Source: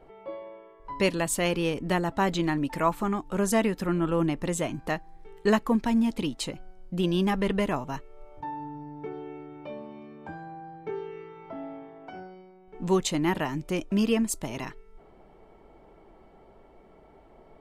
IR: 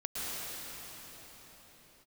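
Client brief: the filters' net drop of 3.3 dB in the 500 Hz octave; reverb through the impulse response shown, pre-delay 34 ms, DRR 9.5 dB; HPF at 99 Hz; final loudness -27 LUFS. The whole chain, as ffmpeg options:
-filter_complex "[0:a]highpass=99,equalizer=f=500:t=o:g=-4.5,asplit=2[a][b];[1:a]atrim=start_sample=2205,adelay=34[c];[b][c]afir=irnorm=-1:irlink=0,volume=-15dB[d];[a][d]amix=inputs=2:normalize=0,volume=2dB"

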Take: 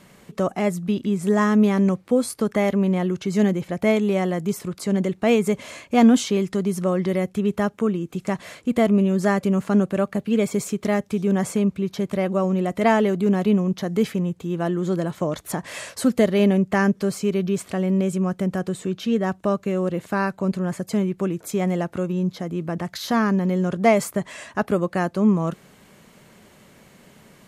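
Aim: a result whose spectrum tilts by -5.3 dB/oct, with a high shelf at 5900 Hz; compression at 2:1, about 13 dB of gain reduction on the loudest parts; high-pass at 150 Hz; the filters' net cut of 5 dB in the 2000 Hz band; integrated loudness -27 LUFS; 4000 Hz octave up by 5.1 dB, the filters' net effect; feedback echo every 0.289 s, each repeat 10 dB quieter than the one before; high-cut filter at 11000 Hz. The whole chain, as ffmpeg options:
-af "highpass=150,lowpass=11k,equalizer=f=2k:t=o:g=-8.5,equalizer=f=4k:t=o:g=7.5,highshelf=f=5.9k:g=5.5,acompressor=threshold=-36dB:ratio=2,aecho=1:1:289|578|867|1156:0.316|0.101|0.0324|0.0104,volume=5.5dB"

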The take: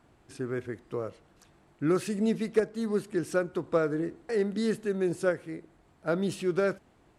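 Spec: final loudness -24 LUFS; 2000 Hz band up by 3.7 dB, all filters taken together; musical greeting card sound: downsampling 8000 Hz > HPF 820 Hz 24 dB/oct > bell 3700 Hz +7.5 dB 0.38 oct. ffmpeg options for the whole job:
-af "equalizer=f=2k:t=o:g=5,aresample=8000,aresample=44100,highpass=f=820:w=0.5412,highpass=f=820:w=1.3066,equalizer=f=3.7k:t=o:w=0.38:g=7.5,volume=14.5dB"

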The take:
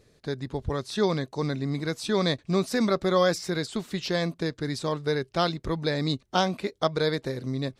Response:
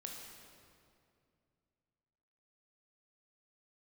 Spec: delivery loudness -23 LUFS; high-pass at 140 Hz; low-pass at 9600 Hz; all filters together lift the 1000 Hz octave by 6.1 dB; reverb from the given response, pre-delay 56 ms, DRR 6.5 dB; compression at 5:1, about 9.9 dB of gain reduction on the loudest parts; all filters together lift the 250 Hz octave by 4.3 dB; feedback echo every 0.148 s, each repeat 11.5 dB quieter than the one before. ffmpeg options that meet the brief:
-filter_complex "[0:a]highpass=140,lowpass=9.6k,equalizer=f=250:t=o:g=6.5,equalizer=f=1k:t=o:g=7.5,acompressor=threshold=-25dB:ratio=5,aecho=1:1:148|296|444:0.266|0.0718|0.0194,asplit=2[a][b];[1:a]atrim=start_sample=2205,adelay=56[c];[b][c]afir=irnorm=-1:irlink=0,volume=-4dB[d];[a][d]amix=inputs=2:normalize=0,volume=6.5dB"

